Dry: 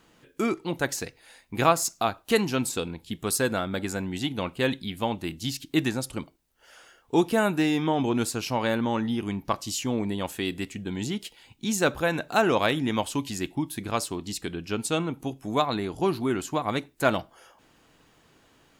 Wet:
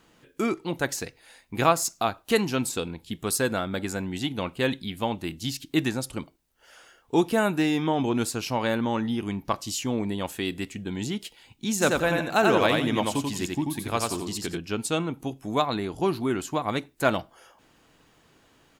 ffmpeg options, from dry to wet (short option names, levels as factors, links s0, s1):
-filter_complex "[0:a]asplit=3[s0][s1][s2];[s0]afade=t=out:st=11.8:d=0.02[s3];[s1]aecho=1:1:88|176|264|352:0.708|0.184|0.0479|0.0124,afade=t=in:st=11.8:d=0.02,afade=t=out:st=14.57:d=0.02[s4];[s2]afade=t=in:st=14.57:d=0.02[s5];[s3][s4][s5]amix=inputs=3:normalize=0"